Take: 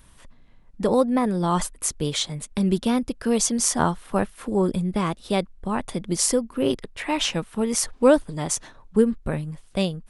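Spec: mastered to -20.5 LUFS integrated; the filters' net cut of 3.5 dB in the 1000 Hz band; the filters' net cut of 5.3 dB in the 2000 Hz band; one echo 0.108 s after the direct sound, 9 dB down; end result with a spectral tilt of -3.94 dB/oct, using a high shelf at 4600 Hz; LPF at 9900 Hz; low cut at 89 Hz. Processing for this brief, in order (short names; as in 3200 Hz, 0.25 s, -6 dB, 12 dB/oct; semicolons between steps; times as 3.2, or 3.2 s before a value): HPF 89 Hz; LPF 9900 Hz; bell 1000 Hz -3 dB; bell 2000 Hz -7.5 dB; high shelf 4600 Hz +6.5 dB; echo 0.108 s -9 dB; gain +2.5 dB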